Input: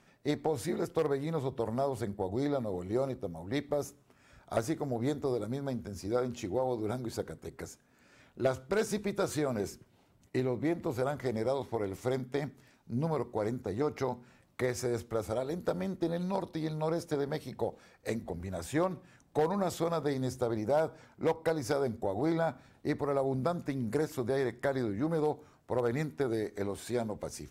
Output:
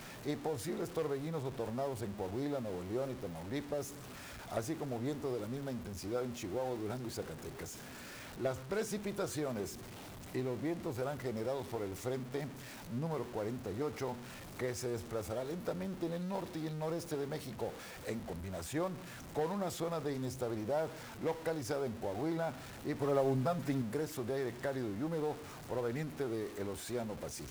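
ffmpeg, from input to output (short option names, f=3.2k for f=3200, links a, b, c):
-filter_complex "[0:a]aeval=exprs='val(0)+0.5*0.0158*sgn(val(0))':c=same,asettb=1/sr,asplit=3[a][b][c];[a]atrim=end=23.004[d];[b]atrim=start=23:end=23.82,asetpts=PTS-STARTPTS,afade=t=in:d=0.004:c=qsin,afade=t=out:st=0.816:d=0.004:c=qsin,aecho=1:1:7.3:1,atrim=end_sample=36162[e];[c]atrim=start=23.816[f];[d][e]acrossfade=d=0.004:c1=hsin:c2=qsin[g];[g][f]acrossfade=d=0.004:c1=qsin:c2=hsin,volume=-7.5dB"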